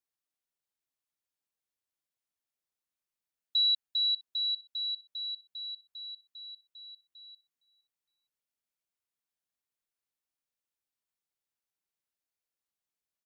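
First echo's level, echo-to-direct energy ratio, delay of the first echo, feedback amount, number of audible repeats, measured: −23.0 dB, −22.5 dB, 462 ms, 32%, 2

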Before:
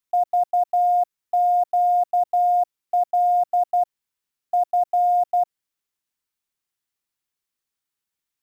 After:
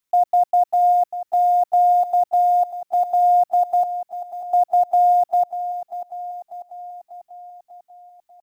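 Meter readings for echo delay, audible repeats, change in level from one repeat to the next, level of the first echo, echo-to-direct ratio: 593 ms, 6, −4.5 dB, −12.0 dB, −10.0 dB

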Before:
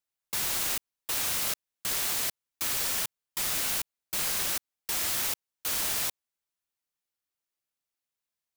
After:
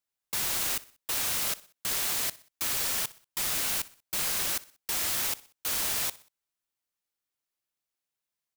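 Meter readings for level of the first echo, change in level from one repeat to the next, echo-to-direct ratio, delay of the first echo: −20.0 dB, −7.0 dB, −19.0 dB, 62 ms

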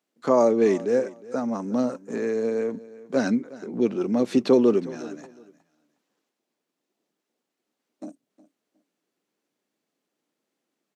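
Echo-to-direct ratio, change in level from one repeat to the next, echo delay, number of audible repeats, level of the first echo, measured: −19.0 dB, −13.0 dB, 362 ms, 2, −19.0 dB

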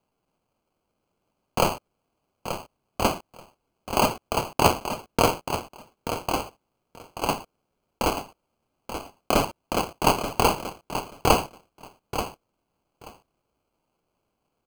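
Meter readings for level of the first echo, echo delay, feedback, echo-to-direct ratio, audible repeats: −9.5 dB, 882 ms, 15%, −9.5 dB, 2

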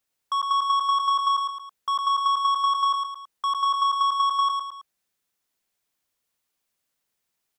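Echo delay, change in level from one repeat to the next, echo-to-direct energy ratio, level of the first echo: 109 ms, −6.0 dB, −3.5 dB, −4.5 dB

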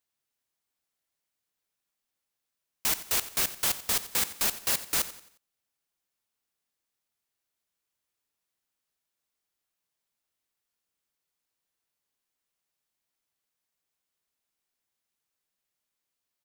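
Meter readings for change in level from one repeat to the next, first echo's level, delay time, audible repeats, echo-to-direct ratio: −8.0 dB, −15.0 dB, 89 ms, 3, −14.5 dB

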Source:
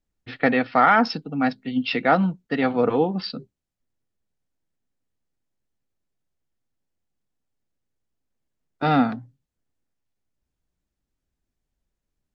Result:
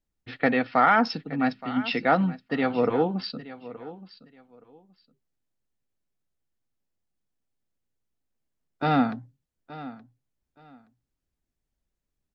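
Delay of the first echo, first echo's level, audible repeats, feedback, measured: 872 ms, −16.5 dB, 2, 21%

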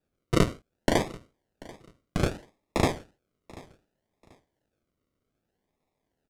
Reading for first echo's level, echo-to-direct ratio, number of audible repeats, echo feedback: −21.5 dB, −21.0 dB, 2, 26%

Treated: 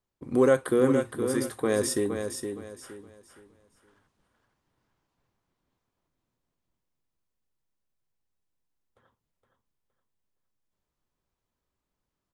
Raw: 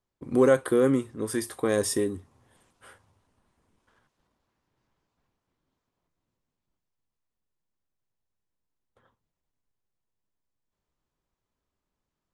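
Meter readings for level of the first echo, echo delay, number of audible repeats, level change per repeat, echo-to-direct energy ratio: −7.0 dB, 466 ms, 3, −11.0 dB, −6.5 dB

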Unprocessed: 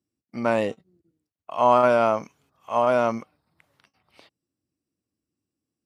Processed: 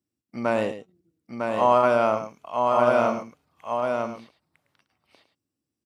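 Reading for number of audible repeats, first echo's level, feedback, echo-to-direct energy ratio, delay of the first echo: 3, −11.0 dB, repeats not evenly spaced, −3.0 dB, 108 ms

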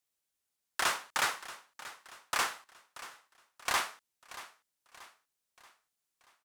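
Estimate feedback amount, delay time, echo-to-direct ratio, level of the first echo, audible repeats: 46%, 632 ms, −15.0 dB, −16.0 dB, 3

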